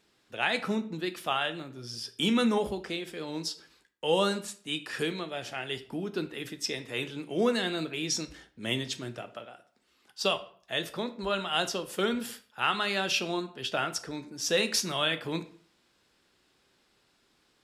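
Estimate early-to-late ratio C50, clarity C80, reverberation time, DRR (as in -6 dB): 15.5 dB, 19.5 dB, 0.50 s, 9.5 dB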